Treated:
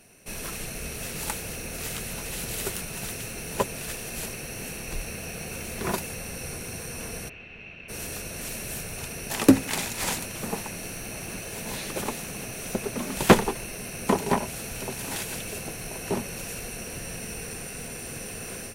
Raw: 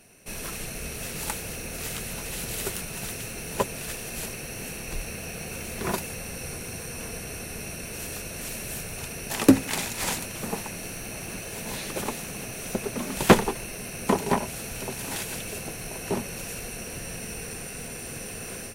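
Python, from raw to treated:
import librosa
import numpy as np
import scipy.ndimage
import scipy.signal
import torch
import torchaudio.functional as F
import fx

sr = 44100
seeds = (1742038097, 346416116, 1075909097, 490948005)

y = fx.ladder_lowpass(x, sr, hz=3000.0, resonance_pct=65, at=(7.28, 7.88), fade=0.02)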